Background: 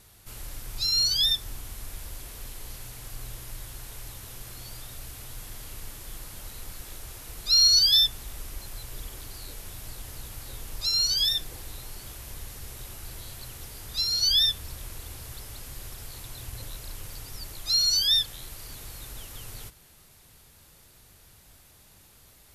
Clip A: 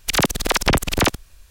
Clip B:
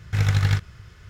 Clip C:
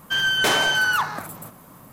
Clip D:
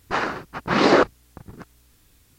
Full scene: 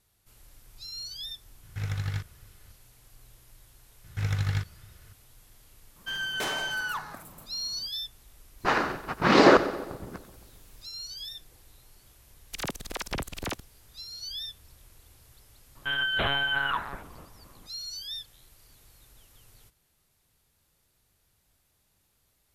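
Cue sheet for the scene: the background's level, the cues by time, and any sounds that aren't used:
background -15.5 dB
1.63 s: add B -11.5 dB
4.04 s: add B -8 dB
5.96 s: add C -11.5 dB
8.54 s: add D -1 dB, fades 0.10 s + two-band feedback delay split 1 kHz, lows 134 ms, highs 92 ms, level -14 dB
12.45 s: add A -16 dB
15.75 s: add C -7 dB + monotone LPC vocoder at 8 kHz 140 Hz

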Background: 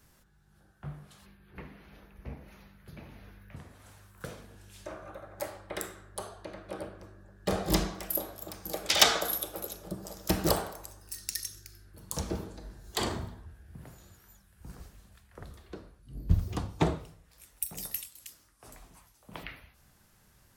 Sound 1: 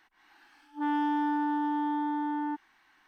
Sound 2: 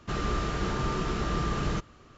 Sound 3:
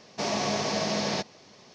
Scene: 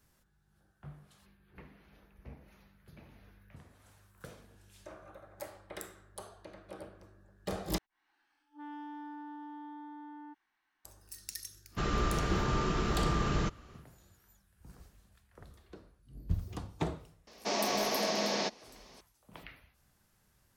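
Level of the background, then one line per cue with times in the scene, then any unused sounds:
background -7.5 dB
7.78 s: replace with 1 -16.5 dB
11.69 s: add 2 -1.5 dB, fades 0.10 s
17.27 s: add 3 -3 dB + high-pass 210 Hz 24 dB/octave

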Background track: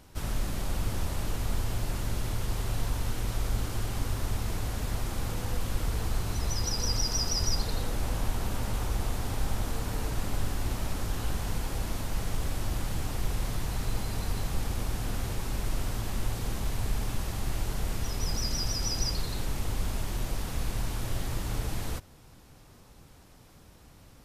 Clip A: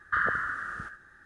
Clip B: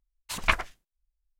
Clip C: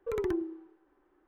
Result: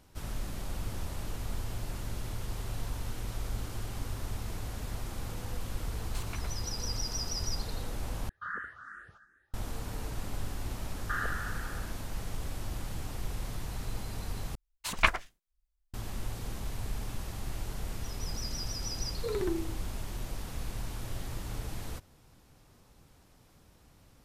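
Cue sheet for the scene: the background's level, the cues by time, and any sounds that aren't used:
background track -6 dB
5.85 s: add B -8.5 dB + compression, threshold -32 dBFS
8.29 s: replace with A -10 dB + barber-pole phaser +2.7 Hz
10.97 s: add A -8 dB
14.55 s: replace with B -1 dB
19.17 s: add C -1.5 dB

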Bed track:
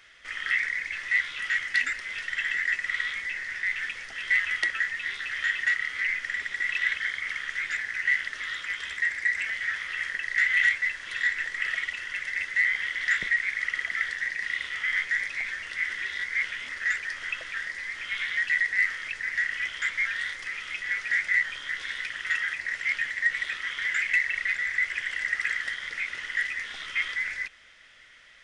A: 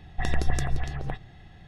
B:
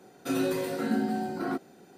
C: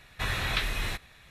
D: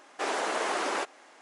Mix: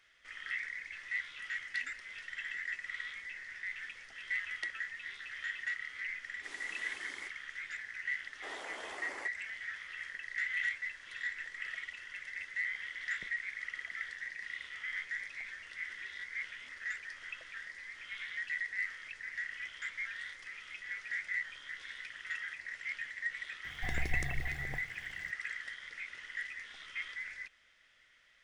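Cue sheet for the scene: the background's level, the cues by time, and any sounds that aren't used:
bed track -12.5 dB
6.24 s: add D + amplifier tone stack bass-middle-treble 6-0-2
8.23 s: add D -17 dB + band-stop 3.8 kHz
23.64 s: add A -11 dB + bit crusher 8-bit
not used: B, C

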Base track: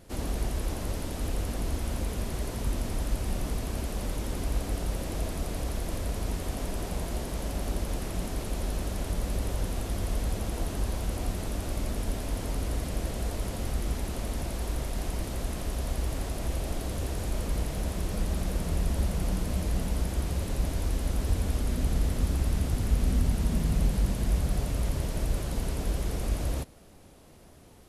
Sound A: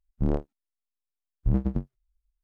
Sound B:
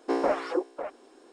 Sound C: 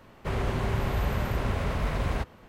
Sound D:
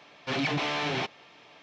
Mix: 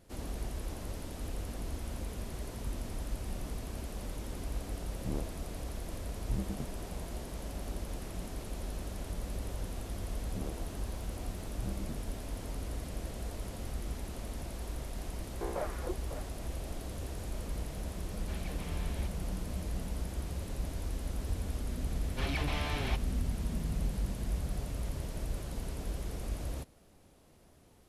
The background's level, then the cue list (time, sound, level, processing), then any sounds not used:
base track -8 dB
4.84 s: add A -11.5 dB
10.13 s: add A -17.5 dB + level flattener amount 50%
15.32 s: add B -11.5 dB + FFT band-pass 310–2600 Hz
18.01 s: add D -16.5 dB + compression 2:1, threshold -32 dBFS
21.90 s: add D -8 dB
not used: C

